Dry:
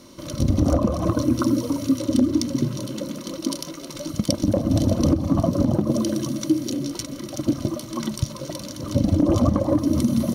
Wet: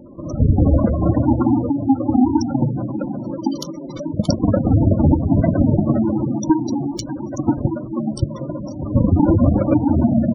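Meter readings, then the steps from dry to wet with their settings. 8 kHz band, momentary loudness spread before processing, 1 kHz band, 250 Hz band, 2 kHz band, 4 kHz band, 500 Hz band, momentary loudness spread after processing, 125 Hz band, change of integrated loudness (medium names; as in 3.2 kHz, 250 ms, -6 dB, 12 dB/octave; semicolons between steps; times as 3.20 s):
-6.0 dB, 11 LU, +6.5 dB, +4.0 dB, no reading, -5.0 dB, +2.5 dB, 11 LU, +6.0 dB, +4.5 dB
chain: square wave that keeps the level; on a send: multi-tap echo 40/594 ms -18/-16 dB; on the sum: spectral gate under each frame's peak -15 dB strong; trim +1.5 dB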